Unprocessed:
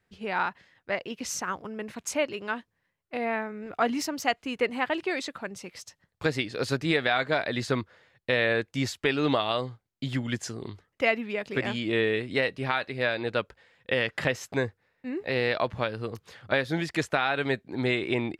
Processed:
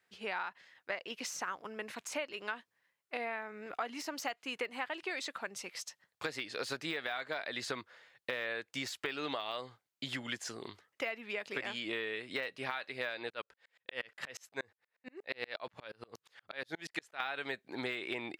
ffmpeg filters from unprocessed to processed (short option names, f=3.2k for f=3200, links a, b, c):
-filter_complex "[0:a]asettb=1/sr,asplit=3[a][b][c];[a]atrim=end=13.304[d];[b]atrim=start=13.3:end=17.2,asetpts=PTS-STARTPTS,afade=t=in:d=0.004:c=qsin,afade=t=out:st=3.896:d=0.004:c=qsin,aeval=exprs='val(0)*pow(10,-37*if(lt(mod(-8.4*n/s,1),2*abs(-8.4)/1000),1-mod(-8.4*n/s,1)/(2*abs(-8.4)/1000),(mod(-8.4*n/s,1)-2*abs(-8.4)/1000)/(1-2*abs(-8.4)/1000))/20)':c=same[e];[c]atrim=start=17.196[f];[d][e]acrossfade=d=0.004:c1=hsin:c2=qsin[g];[g][f]acrossfade=d=0.004:c1=qsin:c2=hsin,deesser=0.85,highpass=f=930:p=1,acompressor=threshold=-36dB:ratio=6,volume=1.5dB"